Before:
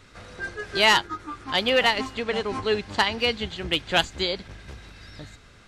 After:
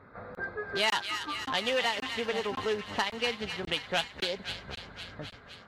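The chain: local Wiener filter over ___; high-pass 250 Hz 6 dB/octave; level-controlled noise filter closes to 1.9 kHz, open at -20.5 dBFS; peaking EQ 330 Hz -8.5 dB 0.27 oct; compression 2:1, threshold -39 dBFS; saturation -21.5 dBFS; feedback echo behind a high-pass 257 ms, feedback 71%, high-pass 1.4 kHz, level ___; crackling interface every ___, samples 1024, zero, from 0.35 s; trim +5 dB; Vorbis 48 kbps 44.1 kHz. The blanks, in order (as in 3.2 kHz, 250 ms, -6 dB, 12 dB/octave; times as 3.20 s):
15 samples, -6.5 dB, 0.55 s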